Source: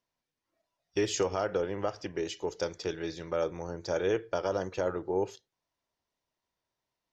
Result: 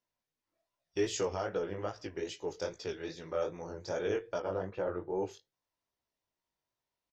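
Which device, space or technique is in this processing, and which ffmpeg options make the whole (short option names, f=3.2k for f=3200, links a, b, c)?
double-tracked vocal: -filter_complex "[0:a]asettb=1/sr,asplit=3[a][b][c];[a]atrim=end=4.384[d];[b]atrim=start=4.38:end=5.1,asetpts=PTS-STARTPTS,afade=t=in:d=0.004:c=qsin,afade=t=out:st=0.716:d=0.004:c=qsin,lowpass=2.3k[e];[c]atrim=start=5.096[f];[d][e]acrossfade=d=0.004:c1=hsin:c2=qsin[g];[g][f]acrossfade=d=0.004:c1=qsin:c2=hsin,asplit=2[h][i];[i]adelay=20,volume=-13dB[j];[h][j]amix=inputs=2:normalize=0,flanger=delay=16:depth=6.4:speed=2.5,volume=-1.5dB"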